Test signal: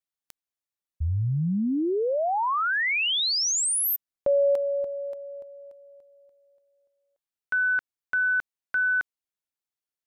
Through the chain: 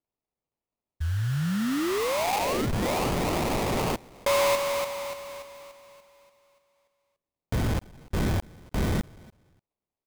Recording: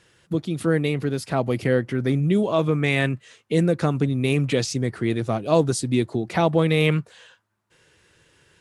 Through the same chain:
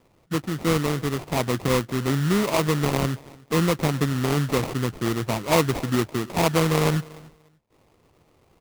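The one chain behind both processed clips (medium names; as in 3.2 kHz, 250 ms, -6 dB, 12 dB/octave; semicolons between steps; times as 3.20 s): feedback delay 291 ms, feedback 19%, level -23.5 dB; sample-rate reducer 1.6 kHz, jitter 20%; trim -1.5 dB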